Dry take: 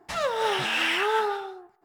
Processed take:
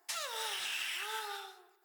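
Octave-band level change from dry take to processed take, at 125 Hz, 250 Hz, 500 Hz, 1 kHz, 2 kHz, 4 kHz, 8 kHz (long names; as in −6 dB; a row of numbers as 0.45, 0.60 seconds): below −30 dB, below −25 dB, −22.0 dB, −16.0 dB, −12.5 dB, −8.0 dB, 0.0 dB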